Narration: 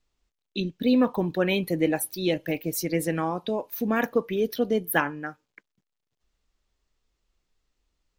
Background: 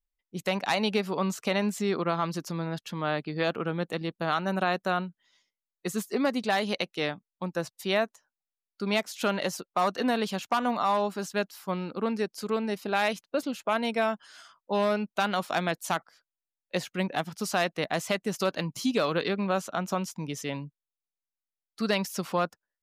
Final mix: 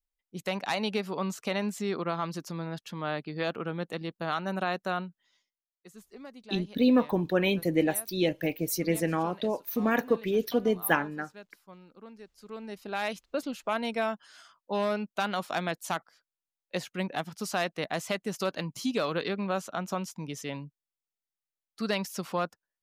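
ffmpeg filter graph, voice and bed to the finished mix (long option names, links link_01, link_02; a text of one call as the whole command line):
ffmpeg -i stem1.wav -i stem2.wav -filter_complex "[0:a]adelay=5950,volume=-1.5dB[link_01];[1:a]volume=13dB,afade=type=out:start_time=5.31:duration=0.34:silence=0.158489,afade=type=in:start_time=12.35:duration=0.98:silence=0.149624[link_02];[link_01][link_02]amix=inputs=2:normalize=0" out.wav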